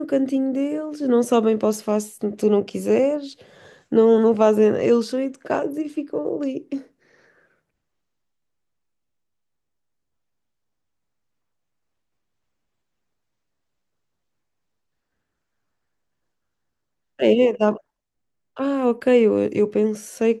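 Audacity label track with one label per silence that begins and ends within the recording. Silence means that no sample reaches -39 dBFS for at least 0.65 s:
6.830000	17.190000	silence
17.780000	18.570000	silence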